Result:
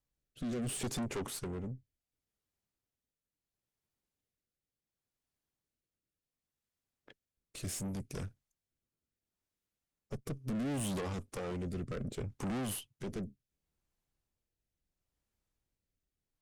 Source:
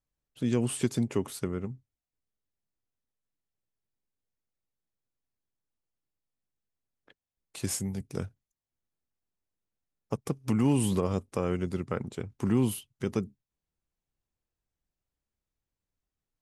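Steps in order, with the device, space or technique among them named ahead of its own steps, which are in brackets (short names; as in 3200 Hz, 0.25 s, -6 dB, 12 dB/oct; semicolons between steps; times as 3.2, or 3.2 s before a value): overdriven rotary cabinet (tube stage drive 38 dB, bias 0.5; rotary speaker horn 0.7 Hz); gain +5 dB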